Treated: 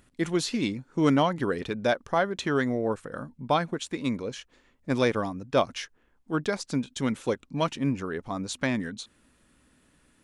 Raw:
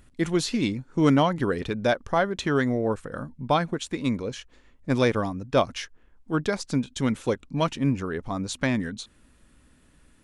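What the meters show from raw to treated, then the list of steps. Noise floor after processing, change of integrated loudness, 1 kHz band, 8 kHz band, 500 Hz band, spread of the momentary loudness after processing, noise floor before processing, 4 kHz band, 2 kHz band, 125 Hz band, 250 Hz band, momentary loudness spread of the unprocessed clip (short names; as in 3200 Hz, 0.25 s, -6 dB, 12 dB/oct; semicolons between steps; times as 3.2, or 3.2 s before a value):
-66 dBFS, -2.5 dB, -1.5 dB, -1.5 dB, -2.0 dB, 12 LU, -59 dBFS, -1.5 dB, -1.5 dB, -4.5 dB, -2.5 dB, 12 LU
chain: low shelf 80 Hz -12 dB; gain -1.5 dB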